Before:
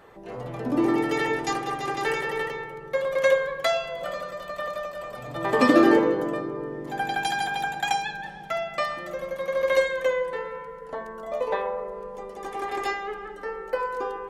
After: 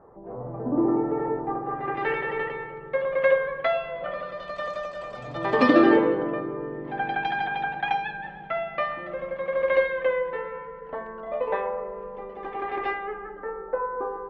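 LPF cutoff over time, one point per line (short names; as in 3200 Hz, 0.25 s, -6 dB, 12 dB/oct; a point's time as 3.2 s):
LPF 24 dB/oct
1.61 s 1100 Hz
2.03 s 2700 Hz
4.1 s 2700 Hz
4.63 s 6500 Hz
5.23 s 6500 Hz
6.28 s 2800 Hz
12.87 s 2800 Hz
13.69 s 1400 Hz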